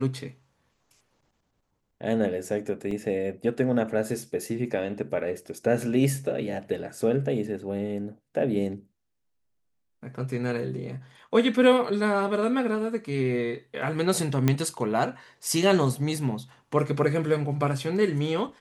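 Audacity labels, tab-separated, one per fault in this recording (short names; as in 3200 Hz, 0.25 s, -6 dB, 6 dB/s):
2.910000	2.910000	gap 2.9 ms
14.480000	14.480000	pop -9 dBFS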